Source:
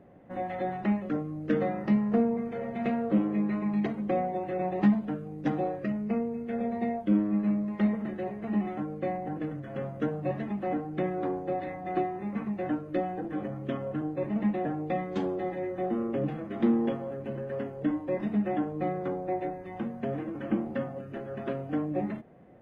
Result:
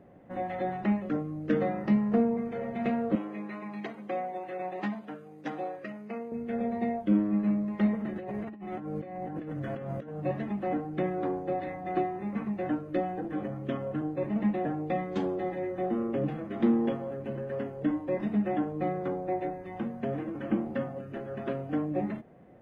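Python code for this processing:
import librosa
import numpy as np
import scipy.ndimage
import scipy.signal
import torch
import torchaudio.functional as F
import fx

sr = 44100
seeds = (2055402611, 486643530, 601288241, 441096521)

y = fx.highpass(x, sr, hz=770.0, slope=6, at=(3.15, 6.32))
y = fx.over_compress(y, sr, threshold_db=-39.0, ratio=-1.0, at=(8.15, 10.19), fade=0.02)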